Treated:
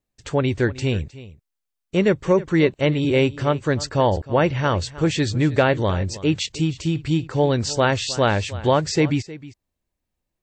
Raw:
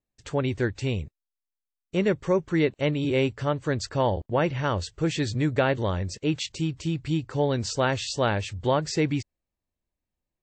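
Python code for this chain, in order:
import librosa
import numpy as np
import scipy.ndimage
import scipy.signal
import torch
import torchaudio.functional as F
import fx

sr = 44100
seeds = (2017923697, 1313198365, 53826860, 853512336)

y = x + 10.0 ** (-17.5 / 20.0) * np.pad(x, (int(312 * sr / 1000.0), 0))[:len(x)]
y = y * 10.0 ** (5.5 / 20.0)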